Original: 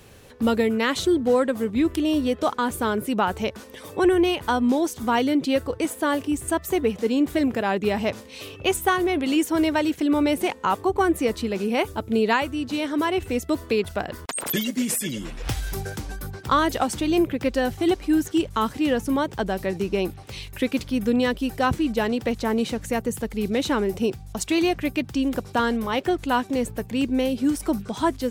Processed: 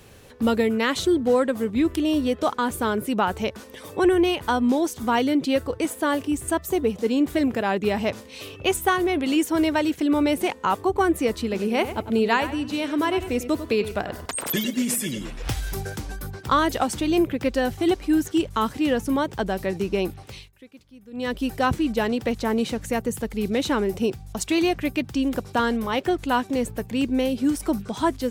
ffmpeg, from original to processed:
-filter_complex "[0:a]asettb=1/sr,asplit=3[s0][s1][s2];[s0]atrim=end=6.614[s3];[s1]atrim=start=6.61:end=7.04,asetpts=PTS-STARTPTS,afade=t=in:d=0.004:c=qsin,afade=t=out:st=0.426:d=0.004:c=qsin,equalizer=f=1900:t=o:w=1.3:g=-5.5[s4];[s2]atrim=start=7.036[s5];[s3][s4]acrossfade=d=0.004:c1=hsin:c2=qsin[s6];[s6][s5]acrossfade=d=0.004:c1=qsin:c2=hsin,asettb=1/sr,asplit=3[s7][s8][s9];[s7]atrim=end=11.414[s10];[s8]atrim=start=11.41:end=15.27,asetpts=PTS-STARTPTS,afade=t=in:d=0.004:c=qsin,afade=t=out:st=3.856:d=0.004:c=qsin,asplit=2[s11][s12];[s12]adelay=98,lowpass=f=4300:p=1,volume=0.266,asplit=2[s13][s14];[s14]adelay=98,lowpass=f=4300:p=1,volume=0.32,asplit=2[s15][s16];[s16]adelay=98,lowpass=f=4300:p=1,volume=0.32[s17];[s11][s13][s15][s17]amix=inputs=4:normalize=0,atrim=end_sample=170226[s18];[s9]atrim=start=15.266[s19];[s10][s18]acrossfade=d=0.004:c1=hsin:c2=qsin[s20];[s20][s19]acrossfade=d=0.004:c1=qsin:c2=hsin,asplit=3[s21][s22][s23];[s21]atrim=end=20.52,asetpts=PTS-STARTPTS,afade=t=out:st=20.24:d=0.28:silence=0.0668344[s24];[s22]atrim=start=20.52:end=21.11,asetpts=PTS-STARTPTS,volume=0.0668[s25];[s23]atrim=start=21.11,asetpts=PTS-STARTPTS,afade=t=in:d=0.28:silence=0.0668344[s26];[s24][s25][s26]concat=n=3:v=0:a=1"

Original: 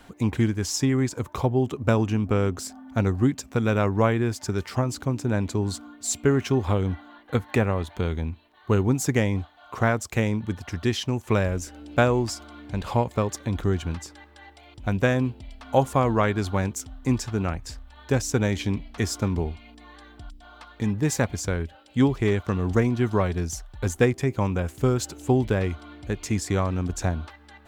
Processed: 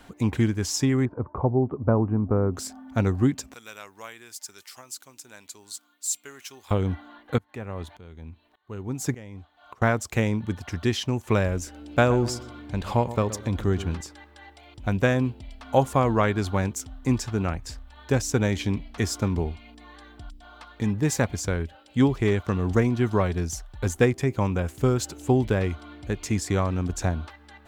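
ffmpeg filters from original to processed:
-filter_complex "[0:a]asettb=1/sr,asplit=3[s0][s1][s2];[s0]atrim=end=1.054[s3];[s1]atrim=start=1.05:end=2.54,asetpts=PTS-STARTPTS,afade=t=in:d=0.004:c=qsin,afade=t=out:st=1.486:d=0.004:c=qsin,lowpass=f=1200:w=0.5412,lowpass=f=1200:w=1.3066[s4];[s2]atrim=start=2.536[s5];[s3][s4]acrossfade=d=0.004:c1=hsin:c2=qsin[s6];[s6][s5]acrossfade=d=0.004:c1=qsin:c2=hsin,asettb=1/sr,asplit=3[s7][s8][s9];[s7]atrim=end=3.544[s10];[s8]atrim=start=3.54:end=6.71,asetpts=PTS-STARTPTS,afade=t=in:d=0.004:c=qsin,afade=t=out:st=3.166:d=0.004:c=qsin,aderivative[s11];[s9]atrim=start=6.706[s12];[s10][s11]acrossfade=d=0.004:c1=hsin:c2=qsin[s13];[s13][s12]acrossfade=d=0.004:c1=qsin:c2=hsin,asettb=1/sr,asplit=3[s14][s15][s16];[s14]atrim=end=7.384[s17];[s15]atrim=start=7.38:end=9.82,asetpts=PTS-STARTPTS,afade=t=in:d=0.004:c=qsin,afade=t=out:st=2.436:d=0.004:c=qsin,aeval=exprs='val(0)*pow(10,-23*if(lt(mod(-1.7*n/s,1),2*abs(-1.7)/1000),1-mod(-1.7*n/s,1)/(2*abs(-1.7)/1000),(mod(-1.7*n/s,1)-2*abs(-1.7)/1000)/(1-2*abs(-1.7)/1000))/20)':c=same[s18];[s16]atrim=start=9.816[s19];[s17][s18]acrossfade=d=0.004:c1=hsin:c2=qsin[s20];[s20][s19]acrossfade=d=0.004:c1=qsin:c2=hsin,asettb=1/sr,asplit=3[s21][s22][s23];[s21]atrim=end=11.854[s24];[s22]atrim=start=11.85:end=14.01,asetpts=PTS-STARTPTS,afade=t=in:d=0.004:c=qsin,afade=t=out:st=2.156:d=0.004:c=qsin,asplit=2[s25][s26];[s26]adelay=122,lowpass=f=1400:p=1,volume=0.224,asplit=2[s27][s28];[s28]adelay=122,lowpass=f=1400:p=1,volume=0.36,asplit=2[s29][s30];[s30]adelay=122,lowpass=f=1400:p=1,volume=0.36,asplit=2[s31][s32];[s32]adelay=122,lowpass=f=1400:p=1,volume=0.36[s33];[s25][s27][s29][s31][s33]amix=inputs=5:normalize=0,atrim=end_sample=95256[s34];[s23]atrim=start=14.006[s35];[s24][s34]acrossfade=d=0.004:c1=hsin:c2=qsin[s36];[s36][s35]acrossfade=d=0.004:c1=qsin:c2=hsin"

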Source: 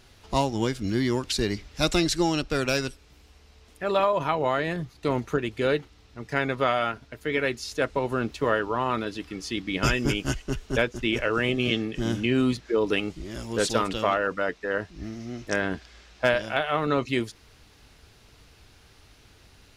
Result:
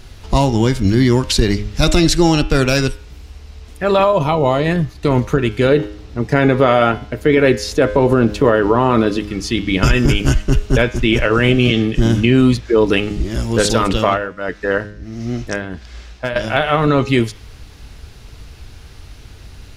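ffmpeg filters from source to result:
-filter_complex "[0:a]asettb=1/sr,asplit=3[s0][s1][s2];[s0]atrim=end=4.044[s3];[s1]atrim=start=4.04:end=4.66,asetpts=PTS-STARTPTS,afade=t=in:d=0.004:c=qsin,afade=t=out:st=0.616:d=0.004:c=qsin,equalizer=f=1600:w=2.5:g=-14.5[s4];[s2]atrim=start=4.656[s5];[s3][s4]acrossfade=d=0.004:c1=hsin:c2=qsin[s6];[s6][s5]acrossfade=d=0.004:c1=qsin:c2=hsin,asettb=1/sr,asplit=3[s7][s8][s9];[s7]atrim=end=5.694[s10];[s8]atrim=start=5.69:end=9.19,asetpts=PTS-STARTPTS,afade=t=in:d=0.004:c=qsin,afade=t=out:st=3.496:d=0.004:c=qsin,equalizer=f=370:w=0.51:g=7[s11];[s9]atrim=start=9.186[s12];[s10][s11]acrossfade=d=0.004:c1=hsin:c2=qsin[s13];[s13][s12]acrossfade=d=0.004:c1=qsin:c2=hsin,asettb=1/sr,asplit=3[s14][s15][s16];[s14]atrim=end=14.004[s17];[s15]atrim=start=14:end=16.36,asetpts=PTS-STARTPTS,afade=t=in:d=0.004:c=qsin,afade=t=out:st=2.356:d=0.004:c=qsin,tremolo=f=1.5:d=0.78[s18];[s16]atrim=start=16.356[s19];[s17][s18]acrossfade=d=0.004:c1=hsin:c2=qsin[s20];[s20][s19]acrossfade=d=0.004:c1=qsin:c2=hsin,lowshelf=f=140:g=11.5,bandreject=f=103.6:t=h:w=4,bandreject=f=207.2:t=h:w=4,bandreject=f=310.8:t=h:w=4,bandreject=f=414.4:t=h:w=4,bandreject=f=518:t=h:w=4,bandreject=f=621.6:t=h:w=4,bandreject=f=725.2:t=h:w=4,bandreject=f=828.8:t=h:w=4,bandreject=f=932.4:t=h:w=4,bandreject=f=1036:t=h:w=4,bandreject=f=1139.6:t=h:w=4,bandreject=f=1243.2:t=h:w=4,bandreject=f=1346.8:t=h:w=4,bandreject=f=1450.4:t=h:w=4,bandreject=f=1554:t=h:w=4,bandreject=f=1657.6:t=h:w=4,bandreject=f=1761.2:t=h:w=4,bandreject=f=1864.8:t=h:w=4,bandreject=f=1968.4:t=h:w=4,bandreject=f=2072:t=h:w=4,bandreject=f=2175.6:t=h:w=4,bandreject=f=2279.2:t=h:w=4,bandreject=f=2382.8:t=h:w=4,bandreject=f=2486.4:t=h:w=4,bandreject=f=2590:t=h:w=4,bandreject=f=2693.6:t=h:w=4,bandreject=f=2797.2:t=h:w=4,bandreject=f=2900.8:t=h:w=4,bandreject=f=3004.4:t=h:w=4,bandreject=f=3108:t=h:w=4,bandreject=f=3211.6:t=h:w=4,bandreject=f=3315.2:t=h:w=4,bandreject=f=3418.8:t=h:w=4,bandreject=f=3522.4:t=h:w=4,bandreject=f=3626:t=h:w=4,bandreject=f=3729.6:t=h:w=4,alimiter=level_in=4.22:limit=0.891:release=50:level=0:latency=1,volume=0.794"

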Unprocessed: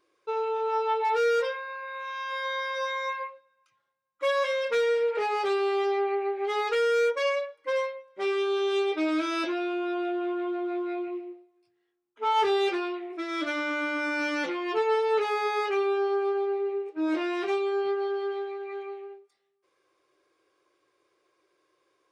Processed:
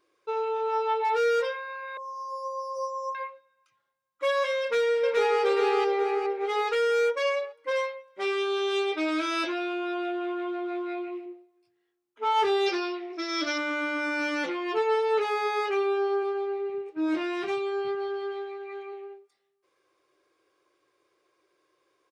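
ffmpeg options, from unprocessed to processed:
-filter_complex "[0:a]asettb=1/sr,asplit=3[s0][s1][s2];[s0]atrim=end=1.974[s3];[s1]atrim=start=1.97:end=3.15,asetpts=PTS-STARTPTS,afade=t=in:d=0.004:c=qsin,afade=t=out:st=1.176:d=0.004:c=qsin,asuperstop=centerf=2400:order=20:qfactor=0.64[s4];[s2]atrim=start=3.146[s5];[s3][s4]acrossfade=d=0.004:c1=hsin:c2=qsin[s6];[s6][s5]acrossfade=d=0.004:c1=qsin:c2=hsin,asplit=2[s7][s8];[s8]afade=t=in:st=4.61:d=0.01,afade=t=out:st=5.42:d=0.01,aecho=0:1:420|840|1260|1680|2100|2520:0.841395|0.378628|0.170383|0.0766721|0.0345025|0.0155261[s9];[s7][s9]amix=inputs=2:normalize=0,asettb=1/sr,asplit=3[s10][s11][s12];[s10]atrim=end=7.714[s13];[s11]atrim=start=7.71:end=11.26,asetpts=PTS-STARTPTS,afade=t=in:d=0.004:c=qsin,afade=t=out:st=3.546:d=0.004:c=qsin,tiltshelf=f=680:g=-3[s14];[s12]atrim=start=11.256[s15];[s13][s14]acrossfade=d=0.004:c1=hsin:c2=qsin[s16];[s16][s15]acrossfade=d=0.004:c1=qsin:c2=hsin,asettb=1/sr,asplit=3[s17][s18][s19];[s17]atrim=end=12.664[s20];[s18]atrim=start=12.66:end=13.58,asetpts=PTS-STARTPTS,afade=t=in:d=0.004:c=qsin,afade=t=out:st=0.916:d=0.004:c=qsin,lowpass=f=5400:t=q:w=6[s21];[s19]atrim=start=13.576[s22];[s20][s21]acrossfade=d=0.004:c1=hsin:c2=qsin[s23];[s23][s22]acrossfade=d=0.004:c1=qsin:c2=hsin,asplit=3[s24][s25][s26];[s24]afade=t=out:st=16.22:d=0.02[s27];[s25]asubboost=boost=5:cutoff=180,afade=t=in:st=16.22:d=0.02,afade=t=out:st=18.92:d=0.02[s28];[s26]afade=t=in:st=18.92:d=0.02[s29];[s27][s28][s29]amix=inputs=3:normalize=0"

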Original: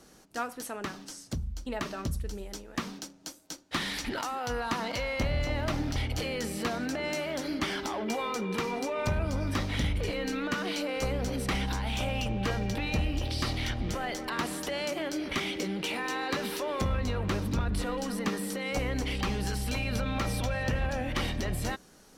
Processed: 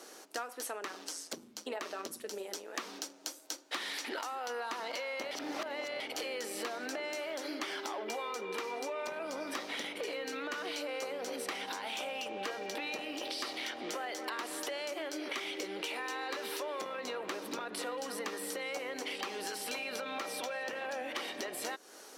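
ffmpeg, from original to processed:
-filter_complex "[0:a]asplit=3[s0][s1][s2];[s0]afade=t=out:st=0.78:d=0.02[s3];[s1]tremolo=f=170:d=0.519,afade=t=in:st=0.78:d=0.02,afade=t=out:st=2.73:d=0.02[s4];[s2]afade=t=in:st=2.73:d=0.02[s5];[s3][s4][s5]amix=inputs=3:normalize=0,asplit=3[s6][s7][s8];[s6]atrim=end=5.312[s9];[s7]atrim=start=5.308:end=6.002,asetpts=PTS-STARTPTS,areverse[s10];[s8]atrim=start=5.998[s11];[s9][s10]acrossfade=d=0.004:c1=hsin:c2=hsin[s12];[s12][s11]acrossfade=d=0.004:c1=hsin:c2=hsin,highpass=f=340:w=0.5412,highpass=f=340:w=1.3066,acompressor=threshold=0.00708:ratio=6,volume=2.11"

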